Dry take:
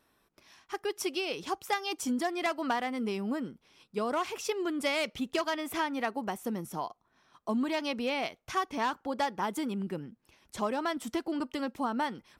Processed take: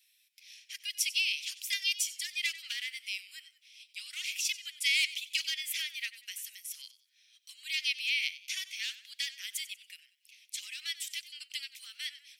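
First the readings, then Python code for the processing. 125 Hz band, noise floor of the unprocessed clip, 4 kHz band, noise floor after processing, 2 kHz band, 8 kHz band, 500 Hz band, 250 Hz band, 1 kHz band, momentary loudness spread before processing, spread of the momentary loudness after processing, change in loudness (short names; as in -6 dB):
under -40 dB, -73 dBFS, +7.5 dB, -70 dBFS, +2.5 dB, +7.5 dB, under -40 dB, under -40 dB, under -35 dB, 7 LU, 17 LU, 0.0 dB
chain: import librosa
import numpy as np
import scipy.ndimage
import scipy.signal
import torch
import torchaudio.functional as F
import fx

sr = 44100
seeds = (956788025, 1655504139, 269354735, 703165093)

y = scipy.signal.sosfilt(scipy.signal.butter(8, 2200.0, 'highpass', fs=sr, output='sos'), x)
y = fx.echo_warbled(y, sr, ms=93, feedback_pct=36, rate_hz=2.8, cents=78, wet_db=-16)
y = F.gain(torch.from_numpy(y), 7.5).numpy()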